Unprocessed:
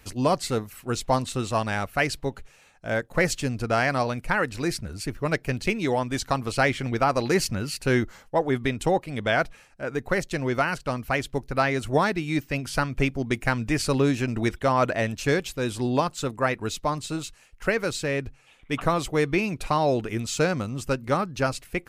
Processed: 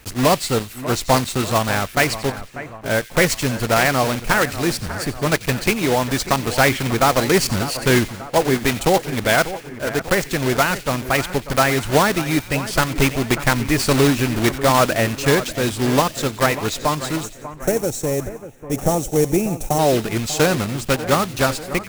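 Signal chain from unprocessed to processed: block floating point 3-bit; spectral gain 17.23–19.79, 900–5400 Hz -14 dB; split-band echo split 2200 Hz, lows 0.592 s, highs 90 ms, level -13.5 dB; gain +6 dB

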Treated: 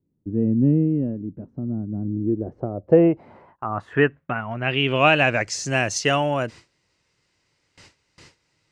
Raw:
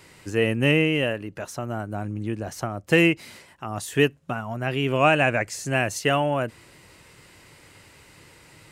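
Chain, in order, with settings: gate with hold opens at -38 dBFS; low-pass sweep 250 Hz -> 5800 Hz, 1.95–5.51; gain +1 dB

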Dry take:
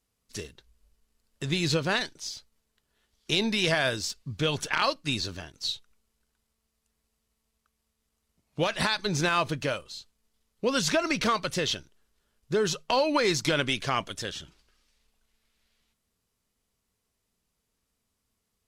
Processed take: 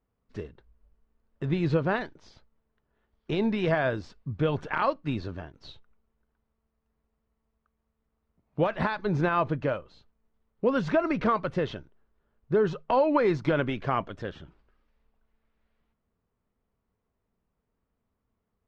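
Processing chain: LPF 1300 Hz 12 dB/oct; gain +2.5 dB

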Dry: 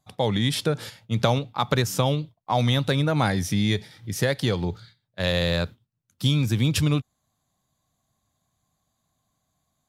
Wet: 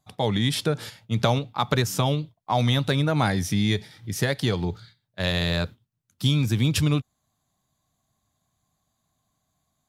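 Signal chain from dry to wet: notch 520 Hz, Q 12

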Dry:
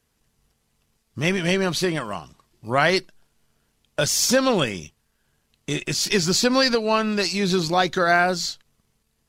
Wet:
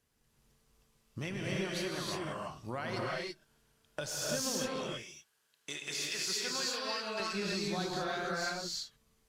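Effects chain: 4.68–7.2 HPF 1200 Hz 6 dB/oct; compressor, threshold -30 dBFS, peak gain reduction 15.5 dB; reverb, pre-delay 3 ms, DRR -3.5 dB; gain -7.5 dB

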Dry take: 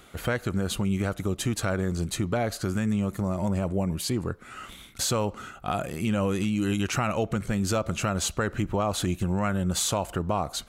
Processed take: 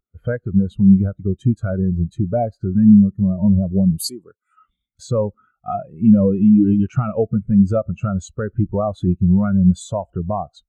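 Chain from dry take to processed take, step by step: 3.98–4.56 RIAA curve recording; spectral expander 2.5:1; gain +7 dB

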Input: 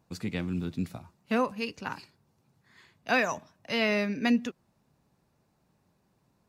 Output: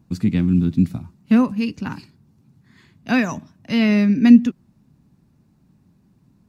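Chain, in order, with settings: resonant low shelf 360 Hz +10.5 dB, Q 1.5; gain +3 dB

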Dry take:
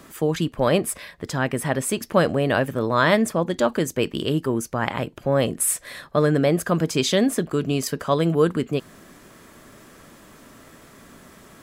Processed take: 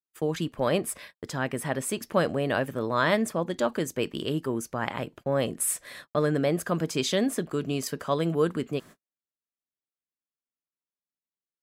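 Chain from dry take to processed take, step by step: gate -38 dBFS, range -55 dB; low shelf 85 Hz -6.5 dB; gain -5.5 dB

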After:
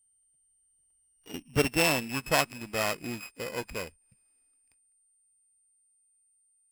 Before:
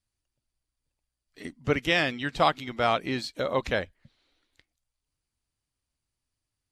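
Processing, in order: sample sorter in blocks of 16 samples; Doppler pass-by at 1.57, 36 m/s, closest 28 m; whine 8900 Hz -66 dBFS

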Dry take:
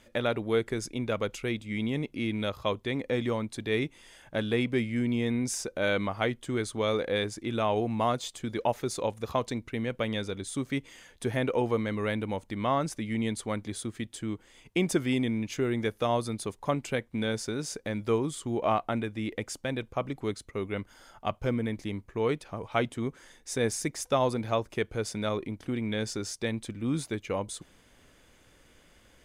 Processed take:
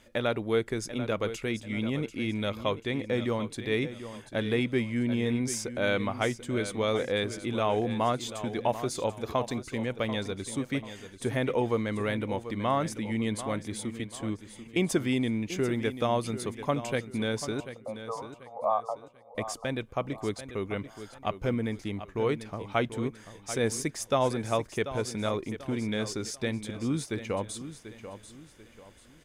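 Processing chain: 17.6–19.35 brick-wall FIR band-pass 470–1300 Hz; feedback echo 0.739 s, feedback 35%, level -12 dB

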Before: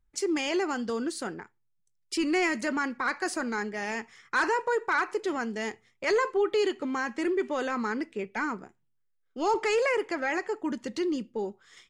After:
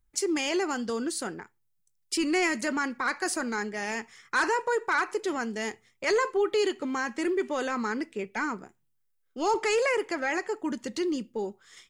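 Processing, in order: high shelf 7100 Hz +10 dB

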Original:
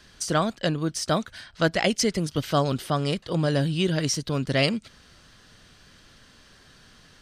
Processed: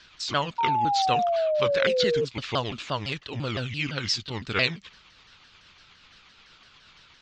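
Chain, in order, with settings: repeated pitch sweeps -6.5 st, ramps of 0.17 s; Bessel low-pass 4000 Hz, order 8; tilt shelf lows -7.5 dB, about 1200 Hz; painted sound fall, 0.58–2.25, 450–940 Hz -24 dBFS

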